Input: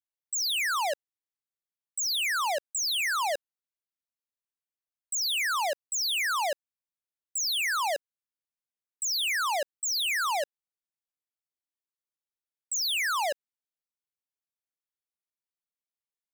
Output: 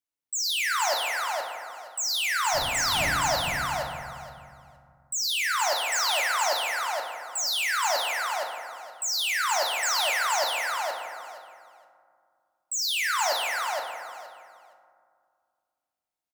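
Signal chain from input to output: 2.53–3.1 wind noise 160 Hz -32 dBFS; feedback echo 0.469 s, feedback 19%, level -3.5 dB; FDN reverb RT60 2.1 s, low-frequency decay 1.5×, high-frequency decay 0.3×, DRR 1 dB

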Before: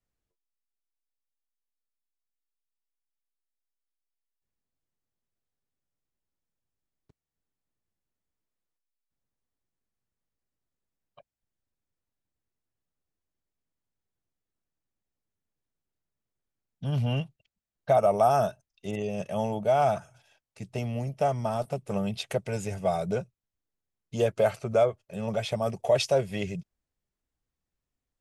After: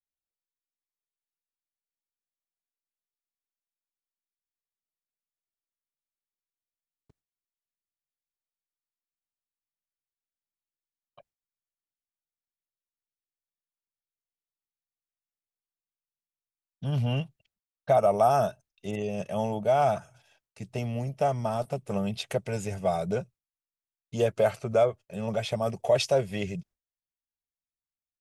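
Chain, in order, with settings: gate with hold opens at -58 dBFS

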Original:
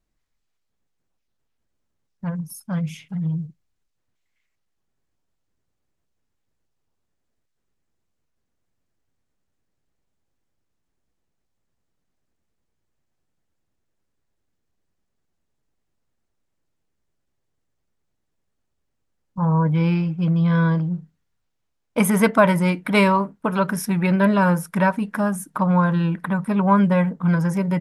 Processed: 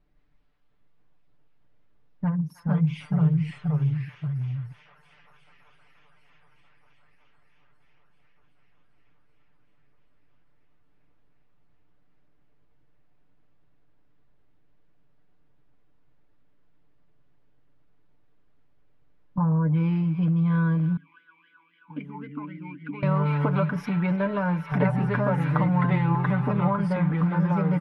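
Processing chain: air absorption 310 m; thin delay 0.308 s, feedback 84%, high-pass 1700 Hz, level -15 dB; compressor 6:1, threshold -32 dBFS, peak gain reduction 19 dB; echoes that change speed 0.153 s, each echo -2 st, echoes 2; comb 6.8 ms, depth 58%; 20.97–23.03 vowel sweep i-u 3.8 Hz; gain +7 dB

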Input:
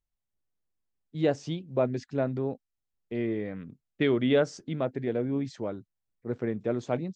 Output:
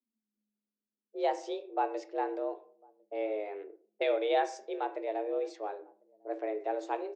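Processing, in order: notches 50/100 Hz; outdoor echo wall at 180 m, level -28 dB; on a send at -9 dB: reverb RT60 0.50 s, pre-delay 17 ms; on the sum: frequency shift +210 Hz; low-pass opened by the level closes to 500 Hz, open at -26 dBFS; gain -5 dB

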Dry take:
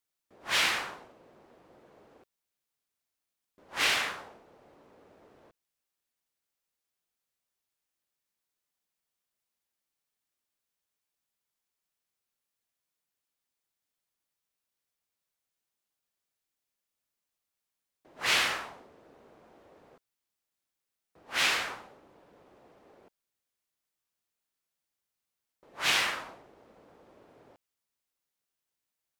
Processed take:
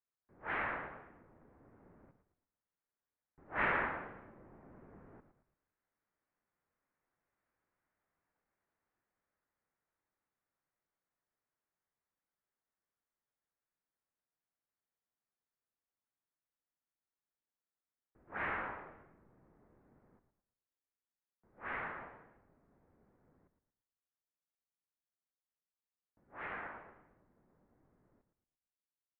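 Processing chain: Doppler pass-by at 7.75, 20 m/s, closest 29 m; frequency-shifting echo 0.113 s, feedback 43%, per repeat -92 Hz, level -10 dB; mistuned SSB -260 Hz 250–2200 Hz; gain +8.5 dB

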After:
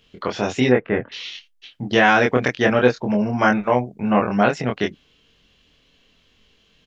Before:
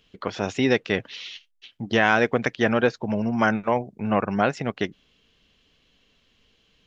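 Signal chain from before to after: 0.69–1.12 LPF 1900 Hz 24 dB/oct; doubler 24 ms -2.5 dB; gain +2.5 dB

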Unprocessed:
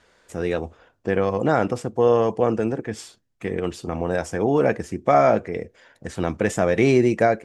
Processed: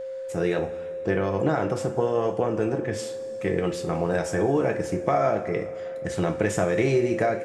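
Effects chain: compressor, threshold -20 dBFS, peak gain reduction 8.5 dB; two-slope reverb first 0.32 s, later 2.9 s, from -18 dB, DRR 3.5 dB; whine 530 Hz -31 dBFS

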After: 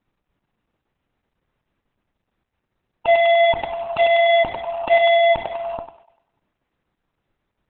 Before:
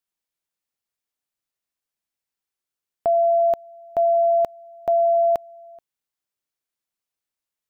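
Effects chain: Wiener smoothing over 9 samples; LPF 1100 Hz 6 dB/oct; low shelf 180 Hz +12 dB; in parallel at +2.5 dB: compressor 5:1, threshold -35 dBFS, peak gain reduction 15.5 dB; on the sum: soft clip -24 dBFS, distortion -10 dB; formant shift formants +5 st; thinning echo 98 ms, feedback 50%, high-pass 510 Hz, level -10 dB; on a send at -16 dB: reverb RT60 0.45 s, pre-delay 4 ms; on the sum: maximiser +24.5 dB; gain -8.5 dB; Opus 8 kbps 48000 Hz

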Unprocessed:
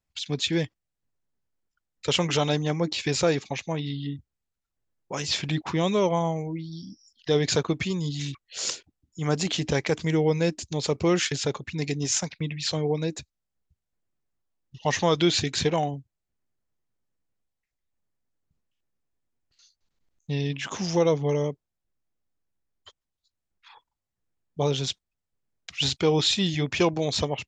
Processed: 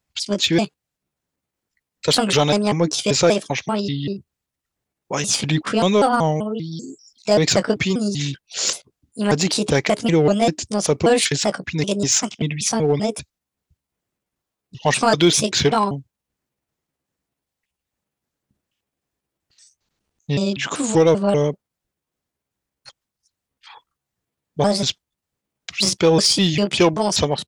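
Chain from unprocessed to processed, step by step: trilling pitch shifter +5.5 st, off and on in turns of 0.194 s; HPF 78 Hz 6 dB/oct; in parallel at -6 dB: hard clip -21.5 dBFS, distortion -10 dB; on the sum: record warp 45 rpm, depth 100 cents; gain +5 dB

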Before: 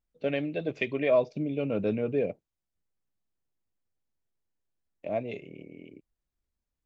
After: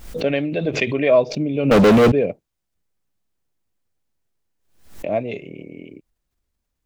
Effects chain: 1.71–2.12 sample leveller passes 5; backwards sustainer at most 97 dB/s; gain +8.5 dB

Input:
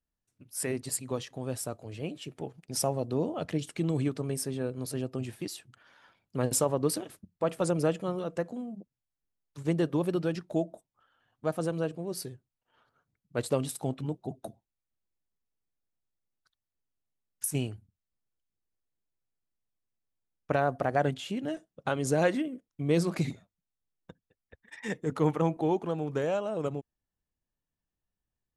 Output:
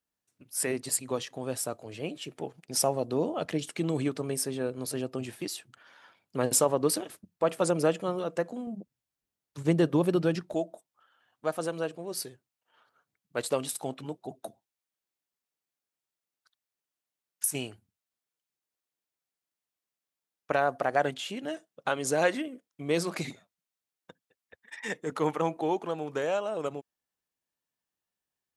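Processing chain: HPF 310 Hz 6 dB/oct, from 8.67 s 84 Hz, from 10.54 s 620 Hz; gain +4 dB

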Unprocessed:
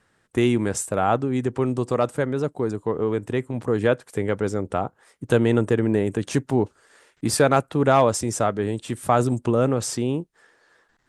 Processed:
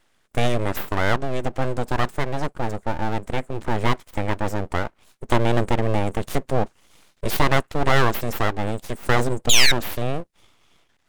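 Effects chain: painted sound fall, 9.49–9.72, 1800–3700 Hz -13 dBFS; full-wave rectifier; gain +2 dB

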